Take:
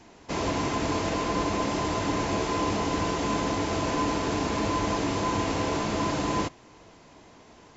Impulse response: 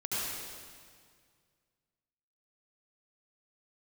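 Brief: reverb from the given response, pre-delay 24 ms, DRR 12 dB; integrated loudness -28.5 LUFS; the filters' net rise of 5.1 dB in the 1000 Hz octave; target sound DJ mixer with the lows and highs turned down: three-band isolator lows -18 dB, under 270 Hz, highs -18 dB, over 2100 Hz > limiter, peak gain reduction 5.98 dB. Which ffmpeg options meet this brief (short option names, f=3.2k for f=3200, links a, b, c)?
-filter_complex "[0:a]equalizer=f=1k:t=o:g=6,asplit=2[a][b];[1:a]atrim=start_sample=2205,adelay=24[c];[b][c]afir=irnorm=-1:irlink=0,volume=-18.5dB[d];[a][d]amix=inputs=2:normalize=0,acrossover=split=270 2100:gain=0.126 1 0.126[e][f][g];[e][f][g]amix=inputs=3:normalize=0,volume=0.5dB,alimiter=limit=-19.5dB:level=0:latency=1"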